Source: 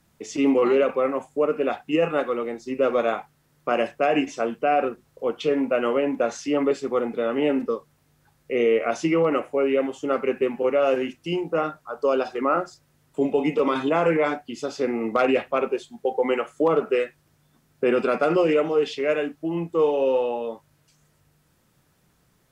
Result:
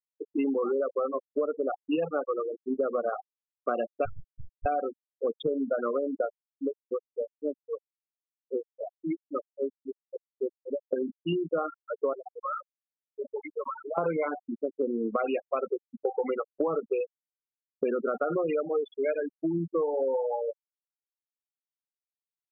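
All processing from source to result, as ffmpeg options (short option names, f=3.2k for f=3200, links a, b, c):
-filter_complex "[0:a]asettb=1/sr,asplit=3[a][b][c];[a]atrim=end=4.054[d];[b]atrim=start=4.05:end=4.66,asetpts=PTS-STARTPTS,afade=t=in:d=0.004:c=qsin,afade=t=out:st=0.606:d=0.004:c=qsin,highpass=790,aeval=exprs='abs(val(0))':c=same,tremolo=f=100:d=0.788[e];[c]atrim=start=4.656[f];[d][e]acrossfade=d=0.004:c1=hsin:c2=qsin[g];[g][f]acrossfade=d=0.004:c1=qsin:c2=hsin,asettb=1/sr,asplit=3[h][i][j];[h]atrim=end=6.404[k];[i]atrim=start=6.4:end=10.93,asetpts=PTS-STARTPTS,afade=t=in:d=0.004:c=qsin,afade=t=out:st=4.526:d=0.004:c=qsin,highpass=f=93:p=1,acompressor=threshold=-27dB:ratio=2:attack=3.2:release=140:knee=1:detection=peak,aeval=exprs='val(0)*pow(10,-32*(0.5-0.5*cos(2*PI*3.7*n/s))/20)':c=same[l];[j]atrim=start=10.926[m];[k][l]acrossfade=d=0.004:c1=hsin:c2=qsin[n];[n][m]acrossfade=d=0.004:c1=qsin:c2=hsin,asettb=1/sr,asplit=3[o][p][q];[o]atrim=end=12.134[r];[p]atrim=start=12.13:end=13.98,asetpts=PTS-STARTPTS,afade=t=in:d=0.004:c=qsin,afade=t=out:st=1.846:d=0.004:c=qsin,highpass=770,acompressor=threshold=-28dB:ratio=5:attack=3.2:release=140:knee=1:detection=peak[s];[q]atrim=start=13.976[t];[r][s]acrossfade=d=0.004:c1=hsin:c2=qsin[u];[u][t]acrossfade=d=0.004:c1=qsin:c2=hsin,adynamicequalizer=threshold=0.02:dfrequency=270:dqfactor=0.91:tfrequency=270:tqfactor=0.91:attack=5:release=100:ratio=0.375:range=3:mode=cutabove:tftype=bell,afftfilt=real='re*gte(hypot(re,im),0.126)':imag='im*gte(hypot(re,im),0.126)':win_size=1024:overlap=0.75,acompressor=threshold=-26dB:ratio=10,volume=1.5dB"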